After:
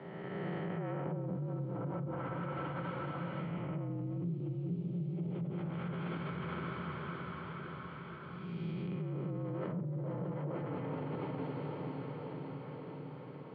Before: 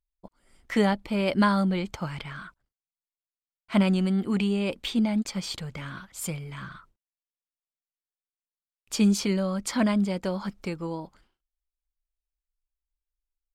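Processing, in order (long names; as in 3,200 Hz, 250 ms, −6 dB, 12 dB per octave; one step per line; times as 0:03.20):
spectrum smeared in time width 677 ms
tuned comb filter 230 Hz, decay 0.35 s, harmonics all, mix 70%
on a send: feedback delay with all-pass diffusion 478 ms, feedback 53%, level −4 dB
on the sum: treble cut that deepens with the level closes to 330 Hz, closed at −31.5 dBFS
in parallel at +0.5 dB: compressor whose output falls as the input rises −48 dBFS, ratio −1
on the sum: high-shelf EQ 2,200 Hz −9.5 dB
background noise violet −76 dBFS
single-sideband voice off tune −58 Hz 240–3,500 Hz
parametric band 1,300 Hz +5 dB 0.23 octaves
multiband upward and downward compressor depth 70%
level +3.5 dB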